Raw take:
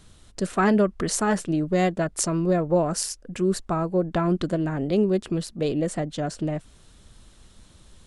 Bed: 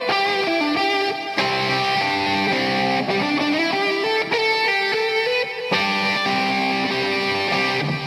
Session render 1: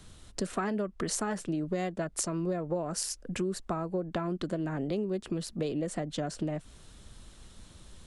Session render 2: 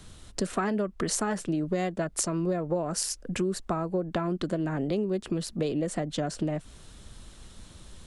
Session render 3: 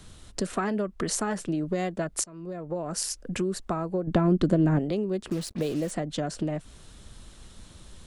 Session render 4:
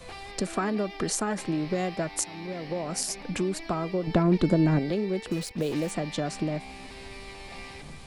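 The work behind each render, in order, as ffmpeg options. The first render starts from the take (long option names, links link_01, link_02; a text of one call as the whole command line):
ffmpeg -i in.wav -filter_complex "[0:a]acrossover=split=150|1100[link_01][link_02][link_03];[link_01]alimiter=level_in=11.5dB:limit=-24dB:level=0:latency=1,volume=-11.5dB[link_04];[link_04][link_02][link_03]amix=inputs=3:normalize=0,acompressor=threshold=-29dB:ratio=6" out.wav
ffmpeg -i in.wav -af "volume=3.5dB" out.wav
ffmpeg -i in.wav -filter_complex "[0:a]asettb=1/sr,asplit=3[link_01][link_02][link_03];[link_01]atrim=end=4.074[link_04];[link_02]atrim=start=4.07:end=4.79,asetpts=PTS-STARTPTS,afade=type=in:duration=0.004:curve=qsin,afade=type=out:start_time=0.716:duration=0.004:curve=qsin,lowshelf=frequency=500:gain=10.5[link_05];[link_03]atrim=start=4.786[link_06];[link_04][link_05]acrossfade=duration=0.004:curve1=hsin:curve2=qsin[link_07];[link_07][link_06]acrossfade=duration=0.004:curve1=qsin:curve2=hsin,asettb=1/sr,asplit=3[link_08][link_09][link_10];[link_08]atrim=end=5.294[link_11];[link_09]atrim=start=5.29:end=5.91,asetpts=PTS-STARTPTS,afade=type=in:duration=0.004:curve=qsin,afade=type=out:start_time=0.616:duration=0.004:curve=qsin,acrusher=bits=6:mix=0:aa=0.5[link_12];[link_10]atrim=start=5.906[link_13];[link_11][link_12]acrossfade=duration=0.004:curve1=hsin:curve2=qsin[link_14];[link_14][link_13]acrossfade=duration=0.004:curve1=qsin:curve2=hsin,asplit=2[link_15][link_16];[link_15]atrim=end=2.24,asetpts=PTS-STARTPTS,afade=type=out:start_time=2.236:duration=0.004:curve=hsin:silence=0.0707946[link_17];[link_16]atrim=start=2.24,asetpts=PTS-STARTPTS,afade=type=in:duration=0.8:silence=0.0707946[link_18];[link_17][link_18]concat=n=2:v=0:a=1" out.wav
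ffmpeg -i in.wav -i bed.wav -filter_complex "[1:a]volume=-23dB[link_01];[0:a][link_01]amix=inputs=2:normalize=0" out.wav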